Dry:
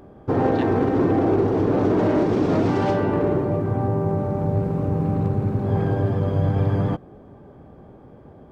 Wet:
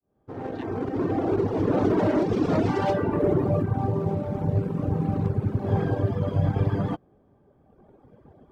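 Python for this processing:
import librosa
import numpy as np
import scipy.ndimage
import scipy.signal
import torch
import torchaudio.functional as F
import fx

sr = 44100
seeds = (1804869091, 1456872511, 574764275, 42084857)

p1 = fx.fade_in_head(x, sr, length_s=1.81)
p2 = np.sign(p1) * np.maximum(np.abs(p1) - 10.0 ** (-36.5 / 20.0), 0.0)
p3 = p1 + F.gain(torch.from_numpy(p2), -4.0).numpy()
p4 = fx.dereverb_blind(p3, sr, rt60_s=1.8)
p5 = fx.env_flatten(p4, sr, amount_pct=50, at=(3.21, 3.64), fade=0.02)
y = F.gain(torch.from_numpy(p5), -3.5).numpy()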